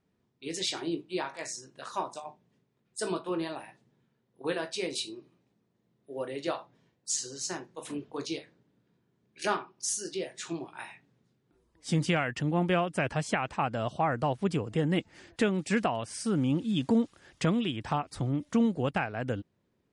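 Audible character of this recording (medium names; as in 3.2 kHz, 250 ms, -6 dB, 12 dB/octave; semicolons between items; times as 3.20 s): noise floor -75 dBFS; spectral tilt -5.0 dB/octave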